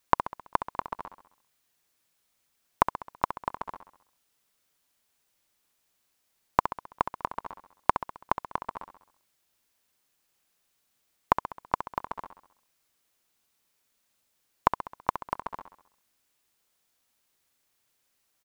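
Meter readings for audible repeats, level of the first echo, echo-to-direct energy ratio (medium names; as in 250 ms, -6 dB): 5, -10.0 dB, -8.5 dB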